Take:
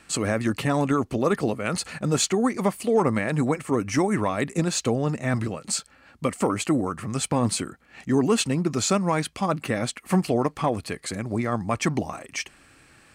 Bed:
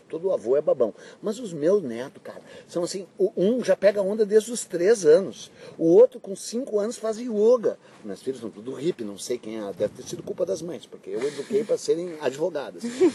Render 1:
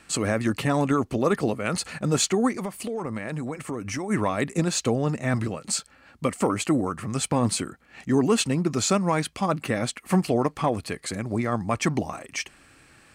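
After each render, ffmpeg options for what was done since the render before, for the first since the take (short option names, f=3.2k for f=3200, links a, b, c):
-filter_complex "[0:a]asplit=3[a][b][c];[a]afade=t=out:st=2.56:d=0.02[d];[b]acompressor=threshold=-27dB:ratio=6:attack=3.2:release=140:knee=1:detection=peak,afade=t=in:st=2.56:d=0.02,afade=t=out:st=4.09:d=0.02[e];[c]afade=t=in:st=4.09:d=0.02[f];[d][e][f]amix=inputs=3:normalize=0"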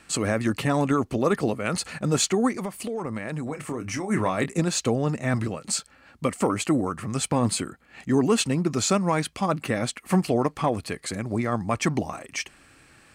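-filter_complex "[0:a]asettb=1/sr,asplit=3[a][b][c];[a]atrim=end=3.444[d];[b]atrim=start=3.44:end=4.46,asetpts=PTS-STARTPTS,afade=t=in:d=0.004:c=qsin,afade=t=out:st=1.016:d=0.004:c=qsin,asplit=2[e][f];[f]adelay=27,volume=-9dB[g];[e][g]amix=inputs=2:normalize=0,atrim=end_sample=44982[h];[c]atrim=start=4.456[i];[d][h]acrossfade=d=0.004:c1=hsin:c2=qsin[j];[j][i]acrossfade=d=0.004:c1=qsin:c2=hsin,asettb=1/sr,asplit=3[k][l][m];[k]atrim=end=7.474[n];[l]atrim=start=7.47:end=8.14,asetpts=PTS-STARTPTS,afade=t=in:d=0.004:c=qsin,afade=t=out:st=0.666:d=0.004:c=qsin,bandreject=f=5.7k:w=12[o];[m]atrim=start=8.136[p];[n][o]acrossfade=d=0.004:c1=hsin:c2=qsin[q];[q][p]acrossfade=d=0.004:c1=qsin:c2=hsin"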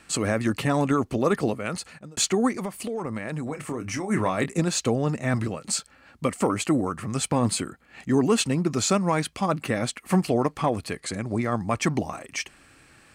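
-filter_complex "[0:a]asettb=1/sr,asplit=3[a][b][c];[a]atrim=end=11.004[d];[b]atrim=start=11:end=11.41,asetpts=PTS-STARTPTS,afade=t=in:d=0.004:c=qsin,afade=t=out:st=0.406:d=0.004:c=qsin,lowpass=f=11k:w=0.5412,lowpass=f=11k:w=1.3066[e];[c]atrim=start=11.406[f];[d][e]acrossfade=d=0.004:c1=hsin:c2=qsin[g];[g][f]acrossfade=d=0.004:c1=qsin:c2=hsin,asplit=2[h][i];[h]atrim=end=2.17,asetpts=PTS-STARTPTS,afade=t=out:st=1.47:d=0.7[j];[i]atrim=start=2.17,asetpts=PTS-STARTPTS,afade=t=in:d=0.004:c=hsin[k];[j][k]concat=n=2:v=0:a=1"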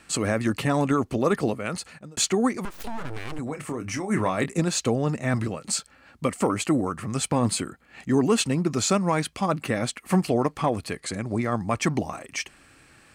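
-filter_complex "[0:a]asettb=1/sr,asplit=3[a][b][c];[a]atrim=end=2.654[d];[b]atrim=start=2.65:end=3.39,asetpts=PTS-STARTPTS,afade=t=in:d=0.004:c=qsin,afade=t=out:st=0.736:d=0.004:c=qsin,aeval=exprs='abs(val(0))':c=same[e];[c]atrim=start=3.386[f];[d][e]acrossfade=d=0.004:c1=hsin:c2=qsin[g];[g][f]acrossfade=d=0.004:c1=qsin:c2=hsin"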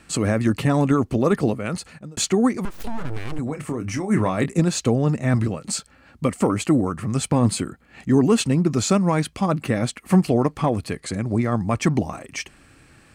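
-af "lowshelf=f=350:g=7.5"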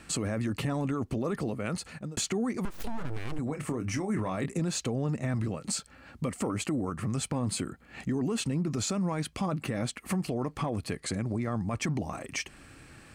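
-af "alimiter=limit=-15.5dB:level=0:latency=1:release=13,acompressor=threshold=-33dB:ratio=2"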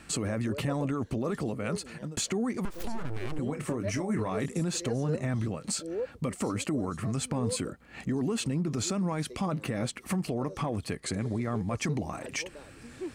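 -filter_complex "[1:a]volume=-19dB[a];[0:a][a]amix=inputs=2:normalize=0"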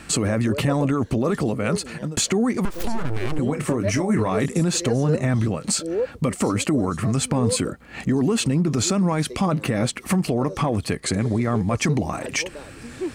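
-af "volume=9.5dB"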